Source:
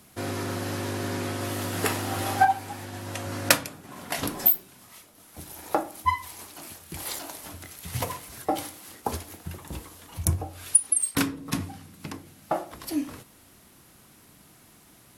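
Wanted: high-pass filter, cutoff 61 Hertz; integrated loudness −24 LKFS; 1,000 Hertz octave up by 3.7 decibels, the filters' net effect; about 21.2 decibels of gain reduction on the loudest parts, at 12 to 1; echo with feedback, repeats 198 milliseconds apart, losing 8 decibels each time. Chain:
high-pass filter 61 Hz
parametric band 1,000 Hz +5 dB
downward compressor 12 to 1, threshold −34 dBFS
repeating echo 198 ms, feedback 40%, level −8 dB
level +15 dB

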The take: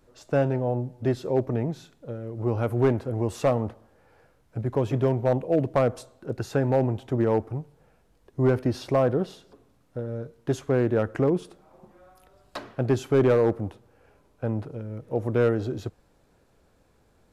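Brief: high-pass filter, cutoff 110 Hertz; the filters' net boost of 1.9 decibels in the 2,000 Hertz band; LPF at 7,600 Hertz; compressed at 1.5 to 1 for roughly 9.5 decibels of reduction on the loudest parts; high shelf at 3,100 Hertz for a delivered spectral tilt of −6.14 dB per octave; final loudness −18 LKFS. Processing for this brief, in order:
high-pass filter 110 Hz
low-pass filter 7,600 Hz
parametric band 2,000 Hz +4.5 dB
high-shelf EQ 3,100 Hz −6 dB
downward compressor 1.5 to 1, threshold −44 dBFS
level +17.5 dB

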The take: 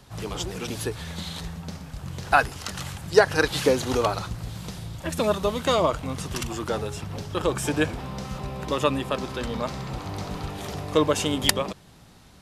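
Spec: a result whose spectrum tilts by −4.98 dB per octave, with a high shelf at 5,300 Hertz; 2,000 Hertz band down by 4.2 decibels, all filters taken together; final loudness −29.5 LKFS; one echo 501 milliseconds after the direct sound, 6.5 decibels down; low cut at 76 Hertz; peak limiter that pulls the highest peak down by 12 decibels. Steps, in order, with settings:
high-pass filter 76 Hz
parametric band 2,000 Hz −5.5 dB
high-shelf EQ 5,300 Hz −3.5 dB
brickwall limiter −16.5 dBFS
single-tap delay 501 ms −6.5 dB
level +0.5 dB

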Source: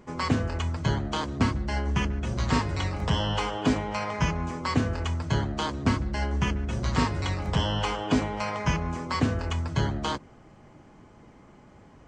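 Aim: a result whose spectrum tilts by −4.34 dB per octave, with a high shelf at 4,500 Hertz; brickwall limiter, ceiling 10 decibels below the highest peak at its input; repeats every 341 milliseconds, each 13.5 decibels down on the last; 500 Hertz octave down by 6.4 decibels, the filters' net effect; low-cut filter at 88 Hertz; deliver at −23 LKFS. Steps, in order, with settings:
high-pass filter 88 Hz
parametric band 500 Hz −8.5 dB
high-shelf EQ 4,500 Hz +9 dB
brickwall limiter −21 dBFS
repeating echo 341 ms, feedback 21%, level −13.5 dB
level +8.5 dB

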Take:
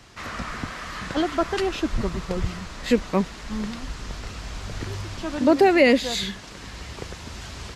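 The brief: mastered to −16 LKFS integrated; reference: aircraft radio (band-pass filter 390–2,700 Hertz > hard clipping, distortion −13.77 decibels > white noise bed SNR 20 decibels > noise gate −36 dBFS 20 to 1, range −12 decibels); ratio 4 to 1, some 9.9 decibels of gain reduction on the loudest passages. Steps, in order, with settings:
downward compressor 4 to 1, threshold −24 dBFS
band-pass filter 390–2,700 Hz
hard clipping −25.5 dBFS
white noise bed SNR 20 dB
noise gate −36 dBFS 20 to 1, range −12 dB
level +19 dB

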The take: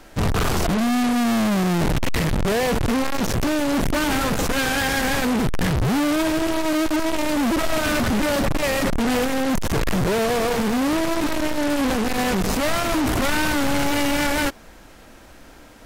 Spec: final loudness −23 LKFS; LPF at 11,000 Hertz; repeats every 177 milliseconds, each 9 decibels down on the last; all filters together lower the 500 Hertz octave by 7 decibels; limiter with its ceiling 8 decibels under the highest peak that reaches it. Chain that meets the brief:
low-pass filter 11,000 Hz
parametric band 500 Hz −9 dB
brickwall limiter −21 dBFS
repeating echo 177 ms, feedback 35%, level −9 dB
level +4.5 dB

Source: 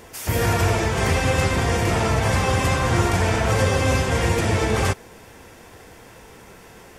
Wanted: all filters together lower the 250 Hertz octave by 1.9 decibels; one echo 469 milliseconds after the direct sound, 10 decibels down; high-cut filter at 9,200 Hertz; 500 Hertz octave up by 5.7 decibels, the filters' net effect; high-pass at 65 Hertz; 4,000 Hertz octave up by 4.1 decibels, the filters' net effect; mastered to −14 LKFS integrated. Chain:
high-pass filter 65 Hz
low-pass filter 9,200 Hz
parametric band 250 Hz −6 dB
parametric band 500 Hz +8 dB
parametric band 4,000 Hz +5.5 dB
single-tap delay 469 ms −10 dB
level +4.5 dB

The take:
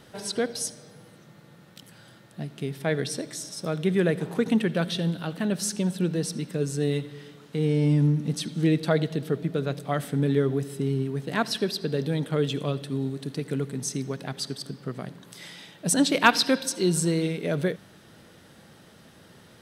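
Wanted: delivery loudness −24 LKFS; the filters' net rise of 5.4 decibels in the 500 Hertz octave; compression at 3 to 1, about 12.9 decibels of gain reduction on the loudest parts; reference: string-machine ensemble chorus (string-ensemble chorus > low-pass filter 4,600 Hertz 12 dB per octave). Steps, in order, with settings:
parametric band 500 Hz +6.5 dB
downward compressor 3 to 1, threshold −30 dBFS
string-ensemble chorus
low-pass filter 4,600 Hz 12 dB per octave
level +12.5 dB

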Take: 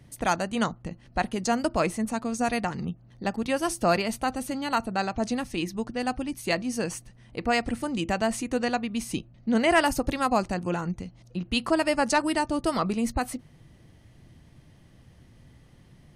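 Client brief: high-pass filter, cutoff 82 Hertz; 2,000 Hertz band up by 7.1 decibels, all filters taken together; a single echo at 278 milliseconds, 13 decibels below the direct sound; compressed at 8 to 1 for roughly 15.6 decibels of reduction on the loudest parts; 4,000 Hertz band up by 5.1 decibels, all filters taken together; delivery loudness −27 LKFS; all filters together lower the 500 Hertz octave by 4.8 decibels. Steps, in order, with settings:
high-pass filter 82 Hz
parametric band 500 Hz −7.5 dB
parametric band 2,000 Hz +8.5 dB
parametric band 4,000 Hz +3.5 dB
downward compressor 8 to 1, threshold −30 dBFS
single-tap delay 278 ms −13 dB
level +7.5 dB

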